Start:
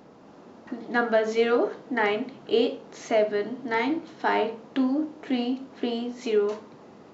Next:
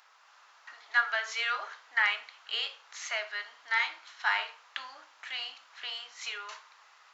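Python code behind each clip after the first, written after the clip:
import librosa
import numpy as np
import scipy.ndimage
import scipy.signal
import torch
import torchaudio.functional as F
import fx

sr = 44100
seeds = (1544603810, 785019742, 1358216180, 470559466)

y = scipy.signal.sosfilt(scipy.signal.butter(4, 1200.0, 'highpass', fs=sr, output='sos'), x)
y = y * librosa.db_to_amplitude(2.5)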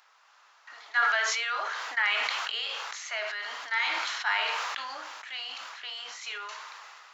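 y = fx.sustainer(x, sr, db_per_s=21.0)
y = y * librosa.db_to_amplitude(-1.0)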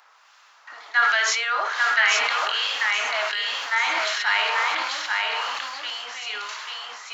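y = fx.harmonic_tremolo(x, sr, hz=1.3, depth_pct=50, crossover_hz=1800.0)
y = y + 10.0 ** (-3.0 / 20.0) * np.pad(y, (int(839 * sr / 1000.0), 0))[:len(y)]
y = y * librosa.db_to_amplitude(8.5)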